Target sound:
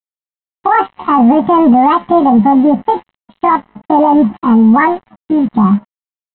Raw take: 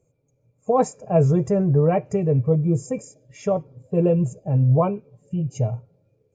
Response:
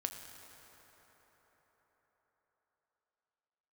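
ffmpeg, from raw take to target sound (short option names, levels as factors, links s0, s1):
-af "flanger=delay=8.9:depth=1.2:regen=59:speed=1.2:shape=sinusoidal,adynamicequalizer=threshold=0.00631:dfrequency=280:dqfactor=4:tfrequency=280:tqfactor=4:attack=5:release=100:ratio=0.375:range=2:mode=boostabove:tftype=bell,asetrate=76340,aresample=44100,atempo=0.577676,aresample=8000,aeval=exprs='sgn(val(0))*max(abs(val(0))-0.00266,0)':c=same,aresample=44100,aecho=1:1:1:0.36,alimiter=level_in=10:limit=0.891:release=50:level=0:latency=1,volume=0.891"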